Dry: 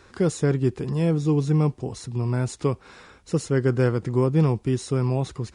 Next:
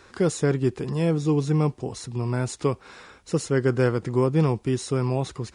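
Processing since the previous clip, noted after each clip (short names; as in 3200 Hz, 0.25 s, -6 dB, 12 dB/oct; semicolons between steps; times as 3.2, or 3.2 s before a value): low shelf 250 Hz -5.5 dB; gain +2 dB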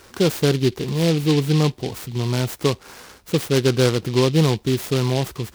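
noise-modulated delay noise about 3300 Hz, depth 0.1 ms; gain +4 dB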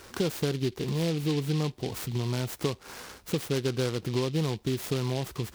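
compressor 3:1, threshold -26 dBFS, peak gain reduction 11 dB; gain -1.5 dB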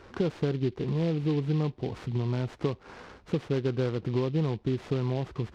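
tape spacing loss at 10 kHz 28 dB; gain +1.5 dB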